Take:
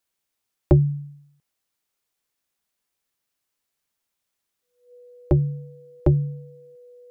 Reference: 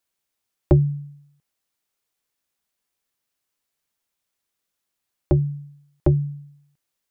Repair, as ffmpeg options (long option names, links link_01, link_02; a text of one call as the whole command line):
ffmpeg -i in.wav -af "bandreject=frequency=490:width=30" out.wav